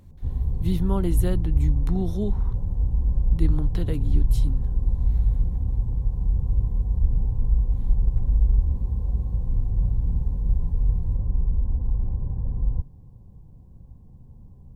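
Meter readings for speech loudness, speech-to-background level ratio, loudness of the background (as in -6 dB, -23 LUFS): -30.5 LUFS, -4.5 dB, -26.0 LUFS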